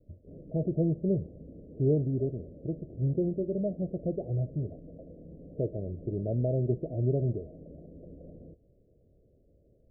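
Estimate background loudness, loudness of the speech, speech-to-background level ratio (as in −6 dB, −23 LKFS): −49.5 LKFS, −31.5 LKFS, 18.0 dB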